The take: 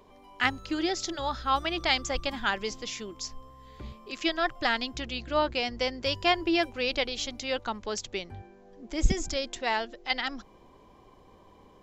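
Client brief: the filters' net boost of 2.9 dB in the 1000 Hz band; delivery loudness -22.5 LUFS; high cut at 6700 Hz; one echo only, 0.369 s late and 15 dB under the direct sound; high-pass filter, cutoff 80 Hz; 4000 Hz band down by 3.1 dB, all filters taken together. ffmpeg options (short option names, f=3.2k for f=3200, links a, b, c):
-af "highpass=80,lowpass=6.7k,equalizer=f=1k:t=o:g=4,equalizer=f=4k:t=o:g=-4,aecho=1:1:369:0.178,volume=7dB"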